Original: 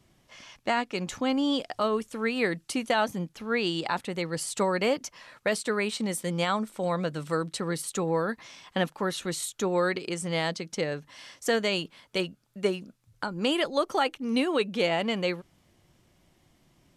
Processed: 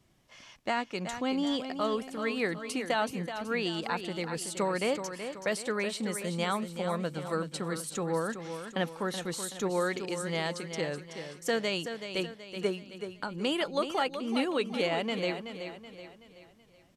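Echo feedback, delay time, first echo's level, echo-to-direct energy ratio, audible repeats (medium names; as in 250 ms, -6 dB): 44%, 377 ms, -9.0 dB, -8.0 dB, 4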